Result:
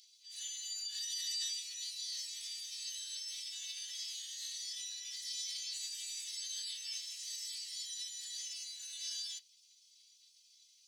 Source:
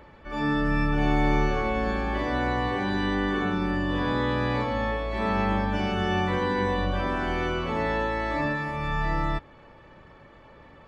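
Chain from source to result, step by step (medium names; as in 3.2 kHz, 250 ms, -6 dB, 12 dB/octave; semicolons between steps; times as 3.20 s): spectral gate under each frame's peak -25 dB weak; ladder high-pass 2.6 kHz, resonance 30%; formant shift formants +5 st; trim +15 dB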